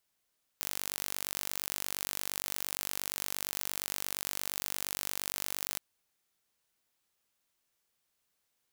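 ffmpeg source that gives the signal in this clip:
ffmpeg -f lavfi -i "aevalsrc='0.398*eq(mod(n,907),0)':duration=5.17:sample_rate=44100" out.wav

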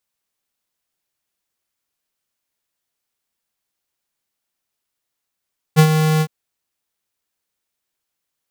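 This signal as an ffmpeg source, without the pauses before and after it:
ffmpeg -f lavfi -i "aevalsrc='0.422*(2*lt(mod(156*t,1),0.5)-1)':duration=0.512:sample_rate=44100,afade=type=in:duration=0.031,afade=type=out:start_time=0.031:duration=0.078:silence=0.398,afade=type=out:start_time=0.45:duration=0.062" out.wav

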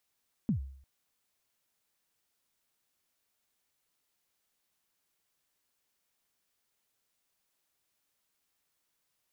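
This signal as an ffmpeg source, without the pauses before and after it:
ffmpeg -f lavfi -i "aevalsrc='0.0708*pow(10,-3*t/0.6)*sin(2*PI*(250*0.106/log(67/250)*(exp(log(67/250)*min(t,0.106)/0.106)-1)+67*max(t-0.106,0)))':duration=0.35:sample_rate=44100" out.wav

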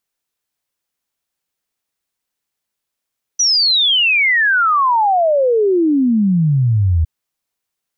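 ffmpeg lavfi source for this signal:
ffmpeg -f lavfi -i "aevalsrc='0.299*clip(min(t,3.66-t)/0.01,0,1)*sin(2*PI*6000*3.66/log(77/6000)*(exp(log(77/6000)*t/3.66)-1))':duration=3.66:sample_rate=44100" out.wav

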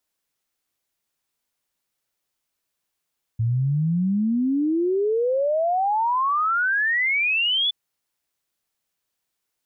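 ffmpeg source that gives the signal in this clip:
ffmpeg -f lavfi -i "aevalsrc='0.119*clip(min(t,4.32-t)/0.01,0,1)*sin(2*PI*110*4.32/log(3500/110)*(exp(log(3500/110)*t/4.32)-1))':duration=4.32:sample_rate=44100" out.wav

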